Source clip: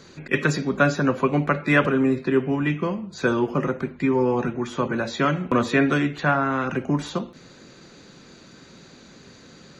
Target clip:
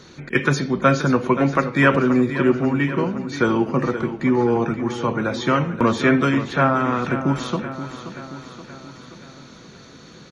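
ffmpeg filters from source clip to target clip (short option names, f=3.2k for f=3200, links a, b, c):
-af "asetrate=41895,aresample=44100,aecho=1:1:527|1054|1581|2108|2635|3162:0.266|0.149|0.0834|0.0467|0.0262|0.0147,volume=2.5dB"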